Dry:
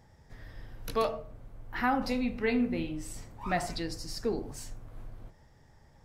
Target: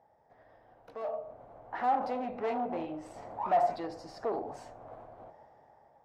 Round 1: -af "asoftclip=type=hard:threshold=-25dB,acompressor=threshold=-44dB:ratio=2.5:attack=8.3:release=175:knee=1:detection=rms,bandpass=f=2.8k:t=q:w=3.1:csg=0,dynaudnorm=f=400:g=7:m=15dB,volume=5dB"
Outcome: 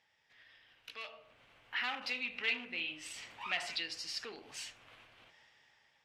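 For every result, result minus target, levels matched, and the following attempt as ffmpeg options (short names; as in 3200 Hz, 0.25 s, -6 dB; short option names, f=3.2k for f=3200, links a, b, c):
2000 Hz band +15.0 dB; hard clip: distortion -7 dB
-af "asoftclip=type=hard:threshold=-25dB,acompressor=threshold=-44dB:ratio=2.5:attack=8.3:release=175:knee=1:detection=rms,bandpass=f=710:t=q:w=3.1:csg=0,dynaudnorm=f=400:g=7:m=15dB,volume=5dB"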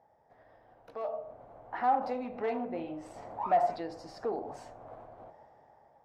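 hard clip: distortion -7 dB
-af "asoftclip=type=hard:threshold=-31dB,acompressor=threshold=-44dB:ratio=2.5:attack=8.3:release=175:knee=1:detection=rms,bandpass=f=710:t=q:w=3.1:csg=0,dynaudnorm=f=400:g=7:m=15dB,volume=5dB"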